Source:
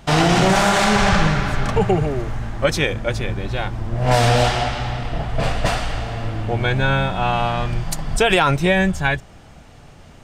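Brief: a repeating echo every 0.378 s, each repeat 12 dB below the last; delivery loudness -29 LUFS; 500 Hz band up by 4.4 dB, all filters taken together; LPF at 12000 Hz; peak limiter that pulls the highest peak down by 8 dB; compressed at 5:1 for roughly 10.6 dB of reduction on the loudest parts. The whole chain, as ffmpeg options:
-af "lowpass=12k,equalizer=f=500:t=o:g=5.5,acompressor=threshold=-21dB:ratio=5,alimiter=limit=-18.5dB:level=0:latency=1,aecho=1:1:378|756|1134:0.251|0.0628|0.0157,volume=-1dB"

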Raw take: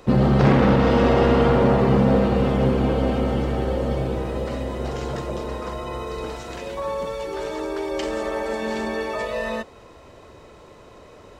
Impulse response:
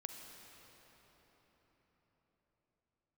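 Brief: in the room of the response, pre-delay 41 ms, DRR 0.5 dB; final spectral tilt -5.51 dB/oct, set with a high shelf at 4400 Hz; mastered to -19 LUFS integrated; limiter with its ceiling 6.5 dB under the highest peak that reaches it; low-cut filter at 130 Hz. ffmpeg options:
-filter_complex "[0:a]highpass=130,highshelf=f=4.4k:g=3.5,alimiter=limit=-12dB:level=0:latency=1,asplit=2[a][b];[1:a]atrim=start_sample=2205,adelay=41[c];[b][c]afir=irnorm=-1:irlink=0,volume=2.5dB[d];[a][d]amix=inputs=2:normalize=0,volume=2.5dB"

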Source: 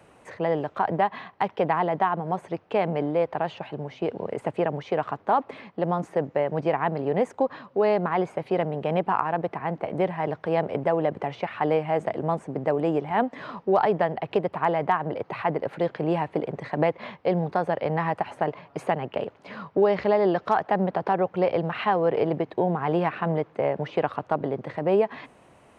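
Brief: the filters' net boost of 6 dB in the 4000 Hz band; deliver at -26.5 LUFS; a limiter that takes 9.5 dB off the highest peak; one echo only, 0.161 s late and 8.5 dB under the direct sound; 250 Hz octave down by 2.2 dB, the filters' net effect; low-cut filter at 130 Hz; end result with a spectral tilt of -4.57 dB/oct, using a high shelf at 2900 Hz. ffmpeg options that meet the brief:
-af "highpass=130,equalizer=f=250:t=o:g=-3,highshelf=f=2.9k:g=6,equalizer=f=4k:t=o:g=4,alimiter=limit=-16.5dB:level=0:latency=1,aecho=1:1:161:0.376,volume=2dB"

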